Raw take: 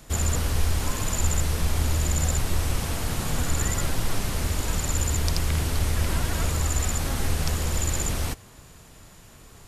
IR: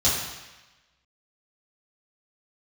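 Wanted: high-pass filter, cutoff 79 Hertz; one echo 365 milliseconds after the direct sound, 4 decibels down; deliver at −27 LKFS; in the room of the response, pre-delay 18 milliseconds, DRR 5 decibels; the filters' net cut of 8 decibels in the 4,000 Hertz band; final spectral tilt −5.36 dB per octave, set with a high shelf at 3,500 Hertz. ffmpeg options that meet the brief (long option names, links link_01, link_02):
-filter_complex "[0:a]highpass=79,highshelf=frequency=3500:gain=-7,equalizer=frequency=4000:width_type=o:gain=-5.5,aecho=1:1:365:0.631,asplit=2[link_01][link_02];[1:a]atrim=start_sample=2205,adelay=18[link_03];[link_02][link_03]afir=irnorm=-1:irlink=0,volume=-19dB[link_04];[link_01][link_04]amix=inputs=2:normalize=0,volume=-3dB"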